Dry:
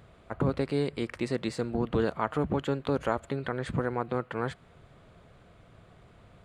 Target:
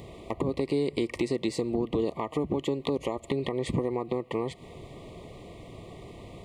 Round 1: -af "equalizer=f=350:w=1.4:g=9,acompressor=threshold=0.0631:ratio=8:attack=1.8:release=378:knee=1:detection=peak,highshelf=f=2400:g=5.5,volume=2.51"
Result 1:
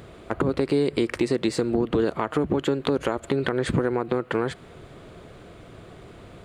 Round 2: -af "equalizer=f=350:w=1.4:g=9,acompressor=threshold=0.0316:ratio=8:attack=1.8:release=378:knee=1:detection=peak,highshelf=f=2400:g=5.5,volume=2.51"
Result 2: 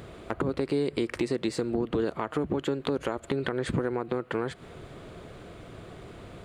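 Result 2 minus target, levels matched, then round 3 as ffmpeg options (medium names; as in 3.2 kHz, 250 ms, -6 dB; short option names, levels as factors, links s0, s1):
2 kHz band +4.5 dB
-af "equalizer=f=350:w=1.4:g=9,acompressor=threshold=0.0316:ratio=8:attack=1.8:release=378:knee=1:detection=peak,asuperstop=centerf=1500:order=20:qfactor=2.3,highshelf=f=2400:g=5.5,volume=2.51"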